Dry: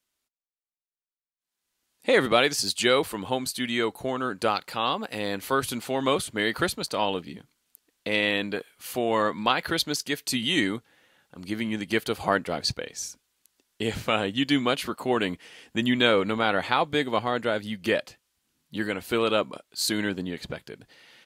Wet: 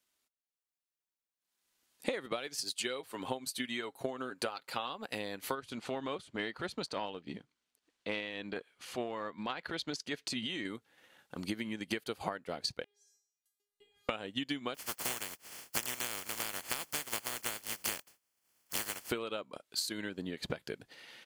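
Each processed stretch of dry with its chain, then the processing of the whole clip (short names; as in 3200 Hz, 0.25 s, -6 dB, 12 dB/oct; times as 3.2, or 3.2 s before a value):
2.47–4.89 HPF 150 Hz 6 dB/oct + comb 7.5 ms, depth 44%
5.55–10.65 air absorption 69 m + transient shaper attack -10 dB, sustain -1 dB + tremolo triangle 3.5 Hz, depth 30%
12.84–14.09 compressor 12:1, threshold -42 dBFS + resonator 410 Hz, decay 0.65 s, mix 100%
14.74–19.09 spectral contrast lowered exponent 0.14 + notch 3800 Hz, Q 6
whole clip: low shelf 120 Hz -7 dB; compressor 12:1, threshold -35 dBFS; transient shaper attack +4 dB, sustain -6 dB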